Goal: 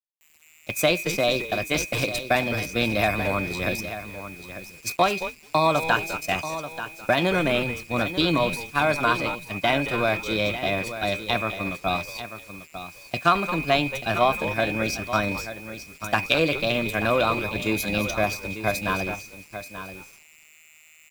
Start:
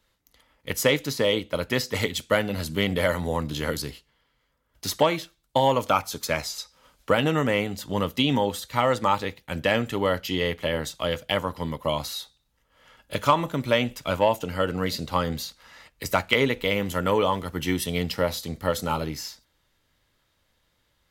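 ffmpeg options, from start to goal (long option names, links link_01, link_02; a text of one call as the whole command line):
ffmpeg -i in.wav -filter_complex "[0:a]aeval=exprs='val(0)+0.0316*sin(2*PI*2100*n/s)':channel_layout=same,asplit=2[link_01][link_02];[link_02]asplit=4[link_03][link_04][link_05][link_06];[link_03]adelay=213,afreqshift=-130,volume=-11dB[link_07];[link_04]adelay=426,afreqshift=-260,volume=-18.3dB[link_08];[link_05]adelay=639,afreqshift=-390,volume=-25.7dB[link_09];[link_06]adelay=852,afreqshift=-520,volume=-33dB[link_10];[link_07][link_08][link_09][link_10]amix=inputs=4:normalize=0[link_11];[link_01][link_11]amix=inputs=2:normalize=0,agate=range=-20dB:threshold=-27dB:ratio=16:detection=peak,asplit=2[link_12][link_13];[link_13]aecho=0:1:888:0.266[link_14];[link_12][link_14]amix=inputs=2:normalize=0,asetrate=52444,aresample=44100,atempo=0.840896,acrusher=bits=7:mix=0:aa=0.000001" out.wav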